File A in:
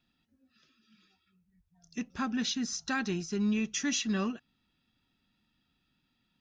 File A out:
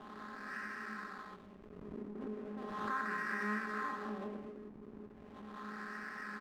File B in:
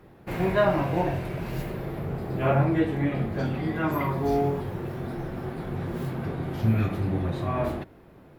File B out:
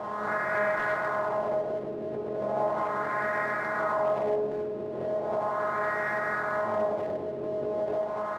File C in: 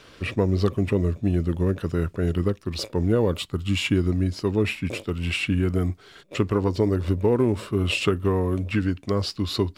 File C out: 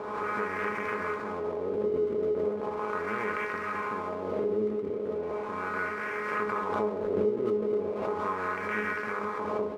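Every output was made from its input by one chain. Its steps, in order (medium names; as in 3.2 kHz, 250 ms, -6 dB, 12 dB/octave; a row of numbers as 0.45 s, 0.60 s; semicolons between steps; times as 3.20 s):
spectral levelling over time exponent 0.2; feedback comb 210 Hz, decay 0.31 s, harmonics all, mix 90%; LFO low-pass sine 0.37 Hz 390–1800 Hz; careless resampling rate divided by 8×, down filtered, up hold; steep low-pass 2.3 kHz 48 dB/octave; tilt EQ +4.5 dB/octave; hum notches 50/100/150/200/250/300/350/400 Hz; speakerphone echo 210 ms, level -7 dB; dynamic bell 330 Hz, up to -3 dB, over -41 dBFS, Q 0.73; hysteresis with a dead band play -47 dBFS; swell ahead of each attack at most 33 dB/s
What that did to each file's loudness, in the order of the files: -10.0 LU, -2.0 LU, -6.5 LU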